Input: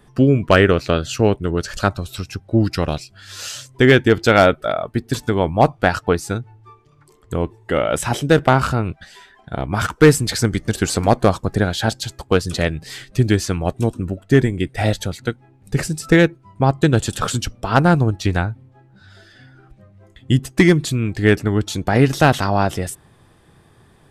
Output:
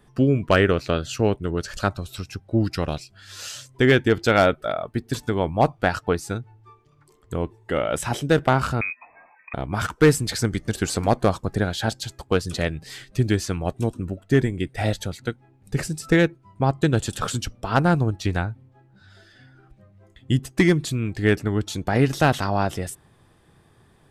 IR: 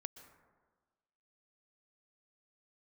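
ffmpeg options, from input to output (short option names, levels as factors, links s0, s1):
-filter_complex "[0:a]asettb=1/sr,asplit=3[s0][s1][s2];[s0]atrim=end=8.814[s3];[s1]atrim=start=8.81:end=9.54,asetpts=PTS-STARTPTS,afade=t=in:d=0.004:c=qsin,afade=t=out:st=0.726:d=0.004:c=qsin,lowpass=f=2200:t=q:w=0.5098,lowpass=f=2200:t=q:w=0.6013,lowpass=f=2200:t=q:w=0.9,lowpass=f=2200:t=q:w=2.563,afreqshift=-2600[s4];[s2]atrim=start=9.536[s5];[s3][s4]acrossfade=d=0.004:c1=hsin:c2=qsin[s6];[s6][s5]acrossfade=d=0.004:c1=qsin:c2=hsin,volume=0.562"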